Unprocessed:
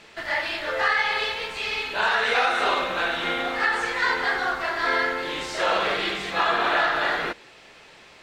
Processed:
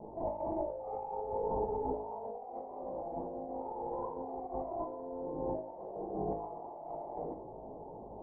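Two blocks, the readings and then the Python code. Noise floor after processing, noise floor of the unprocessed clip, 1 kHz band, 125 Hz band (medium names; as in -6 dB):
-48 dBFS, -50 dBFS, -14.5 dB, -3.0 dB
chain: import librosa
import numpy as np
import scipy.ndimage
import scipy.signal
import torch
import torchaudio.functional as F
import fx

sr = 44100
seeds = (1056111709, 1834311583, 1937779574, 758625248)

y = scipy.signal.sosfilt(scipy.signal.butter(12, 910.0, 'lowpass', fs=sr, output='sos'), x)
y = fx.over_compress(y, sr, threshold_db=-40.0, ratio=-1.0)
y = fx.comb_fb(y, sr, f0_hz=53.0, decay_s=0.6, harmonics='all', damping=0.0, mix_pct=80)
y = y * librosa.db_to_amplitude(7.5)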